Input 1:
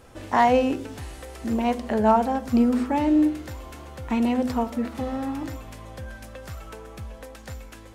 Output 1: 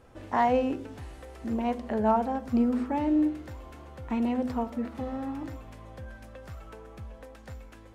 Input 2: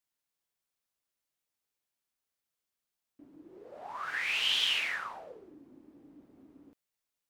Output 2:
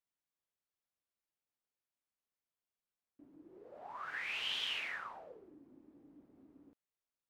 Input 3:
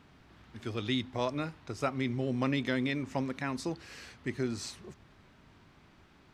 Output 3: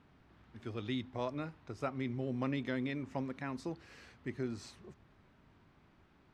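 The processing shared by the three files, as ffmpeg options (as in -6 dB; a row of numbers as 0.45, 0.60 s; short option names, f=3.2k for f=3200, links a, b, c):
-af "highshelf=f=3.1k:g=-9,volume=-5dB"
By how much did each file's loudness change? -5.5, -9.0, -5.5 LU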